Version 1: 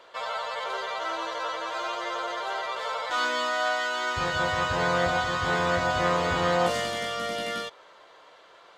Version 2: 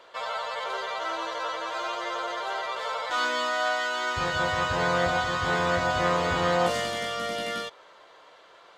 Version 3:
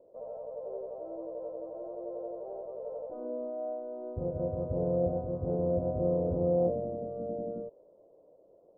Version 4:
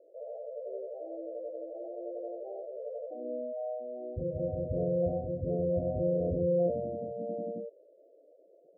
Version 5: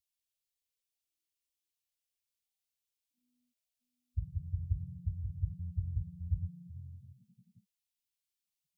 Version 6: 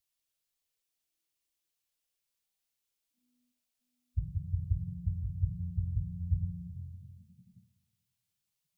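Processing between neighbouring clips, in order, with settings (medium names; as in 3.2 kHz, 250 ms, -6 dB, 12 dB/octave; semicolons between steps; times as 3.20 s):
no audible change
elliptic low-pass 580 Hz, stop band 80 dB
spectral gate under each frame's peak -15 dB strong
inverse Chebyshev band-stop 340–730 Hz, stop band 80 dB; trim +6.5 dB
simulated room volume 2800 m³, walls furnished, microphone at 0.67 m; trim +4 dB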